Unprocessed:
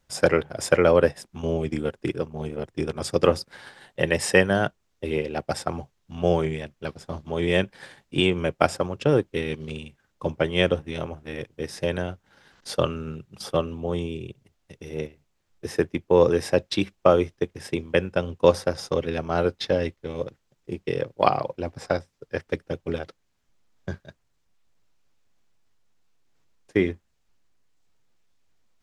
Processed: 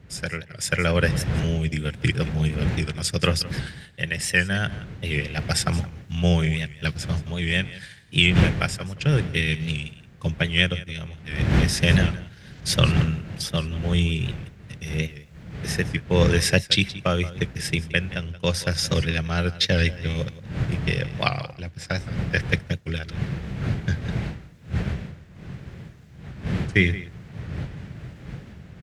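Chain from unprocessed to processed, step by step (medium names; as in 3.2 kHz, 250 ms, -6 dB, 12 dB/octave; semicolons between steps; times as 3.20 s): wind noise 420 Hz -34 dBFS; high-pass 63 Hz; high-order bell 530 Hz -16 dB 2.7 oct; level rider gain up to 15.5 dB; tremolo 0.85 Hz, depth 45%; delay 173 ms -17 dB; warped record 78 rpm, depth 100 cents; trim -1 dB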